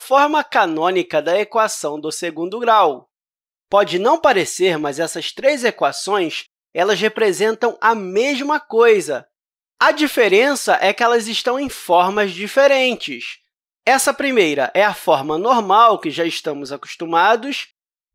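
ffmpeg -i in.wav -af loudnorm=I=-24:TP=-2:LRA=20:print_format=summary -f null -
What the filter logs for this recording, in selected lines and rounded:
Input Integrated:    -16.5 LUFS
Input True Peak:      -2.2 dBTP
Input LRA:             2.0 LU
Input Threshold:     -26.9 LUFS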